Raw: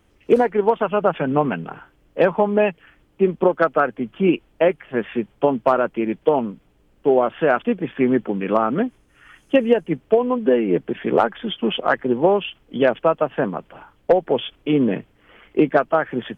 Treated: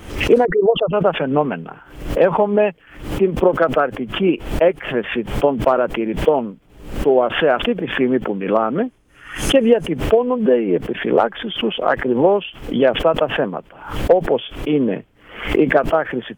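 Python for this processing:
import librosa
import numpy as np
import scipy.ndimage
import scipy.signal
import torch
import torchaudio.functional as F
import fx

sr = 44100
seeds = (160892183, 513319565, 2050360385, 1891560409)

y = fx.envelope_sharpen(x, sr, power=3.0, at=(0.45, 0.93))
y = fx.dynamic_eq(y, sr, hz=530.0, q=1.3, threshold_db=-29.0, ratio=4.0, max_db=4)
y = fx.pre_swell(y, sr, db_per_s=100.0)
y = y * 10.0 ** (-1.0 / 20.0)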